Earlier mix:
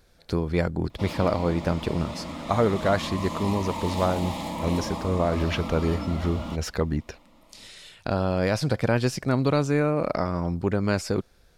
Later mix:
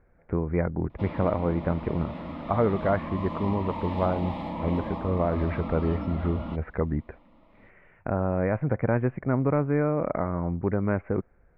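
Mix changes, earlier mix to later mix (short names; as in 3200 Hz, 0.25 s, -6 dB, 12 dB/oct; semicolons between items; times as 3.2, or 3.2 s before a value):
speech: add elliptic low-pass 2200 Hz, stop band 50 dB; master: add air absorption 440 m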